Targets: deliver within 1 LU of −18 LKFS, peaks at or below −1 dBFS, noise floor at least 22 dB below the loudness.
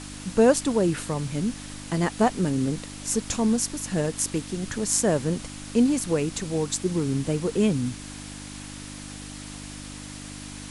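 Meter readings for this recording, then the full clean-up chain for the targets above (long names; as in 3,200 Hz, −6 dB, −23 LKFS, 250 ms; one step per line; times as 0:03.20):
mains hum 50 Hz; hum harmonics up to 300 Hz; level of the hum −39 dBFS; background noise floor −39 dBFS; target noise floor −47 dBFS; integrated loudness −25.0 LKFS; sample peak −5.0 dBFS; target loudness −18.0 LKFS
→ hum removal 50 Hz, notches 6
noise reduction from a noise print 8 dB
level +7 dB
brickwall limiter −1 dBFS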